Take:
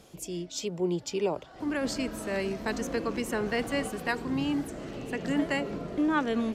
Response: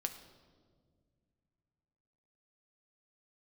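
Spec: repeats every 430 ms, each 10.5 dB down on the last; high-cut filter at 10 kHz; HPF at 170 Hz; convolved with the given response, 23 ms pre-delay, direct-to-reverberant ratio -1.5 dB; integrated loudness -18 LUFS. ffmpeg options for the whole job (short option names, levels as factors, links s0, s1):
-filter_complex "[0:a]highpass=170,lowpass=10000,aecho=1:1:430|860|1290:0.299|0.0896|0.0269,asplit=2[s0][s1];[1:a]atrim=start_sample=2205,adelay=23[s2];[s1][s2]afir=irnorm=-1:irlink=0,volume=1.19[s3];[s0][s3]amix=inputs=2:normalize=0,volume=2.99"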